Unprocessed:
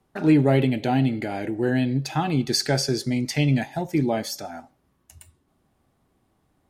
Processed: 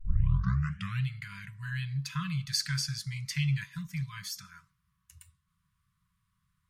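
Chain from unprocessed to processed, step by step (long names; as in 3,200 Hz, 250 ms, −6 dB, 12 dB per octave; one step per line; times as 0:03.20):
turntable start at the beginning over 1.06 s
brick-wall band-stop 200–970 Hz
level −6.5 dB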